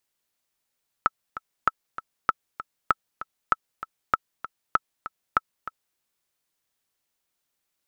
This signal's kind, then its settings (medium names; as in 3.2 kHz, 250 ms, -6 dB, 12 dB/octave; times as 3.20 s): metronome 195 bpm, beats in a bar 2, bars 8, 1.31 kHz, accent 14 dB -5.5 dBFS